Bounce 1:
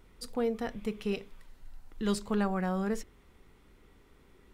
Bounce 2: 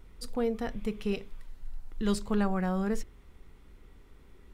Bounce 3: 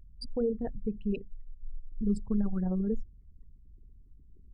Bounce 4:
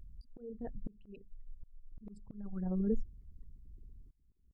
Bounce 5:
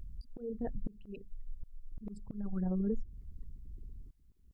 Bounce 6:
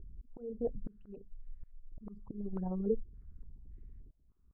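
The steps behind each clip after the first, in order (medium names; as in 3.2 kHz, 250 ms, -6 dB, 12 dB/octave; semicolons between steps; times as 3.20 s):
bass shelf 96 Hz +9.5 dB
resonances exaggerated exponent 3
slow attack 757 ms; trim +1 dB
compression 5:1, threshold -36 dBFS, peak gain reduction 9 dB; trim +6 dB
step-sequenced low-pass 3.5 Hz 390–1900 Hz; trim -4 dB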